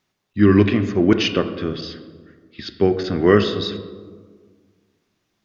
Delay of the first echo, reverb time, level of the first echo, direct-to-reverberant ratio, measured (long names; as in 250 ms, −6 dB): no echo audible, 1.6 s, no echo audible, 8.0 dB